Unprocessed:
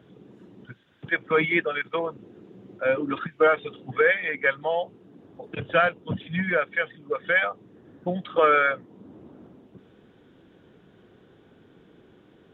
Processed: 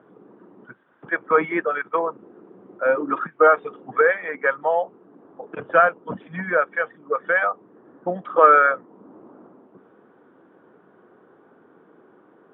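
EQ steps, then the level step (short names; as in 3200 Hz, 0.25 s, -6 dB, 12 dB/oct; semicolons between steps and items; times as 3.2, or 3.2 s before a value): HPF 260 Hz 12 dB/oct; synth low-pass 1200 Hz, resonance Q 2.1; +2.5 dB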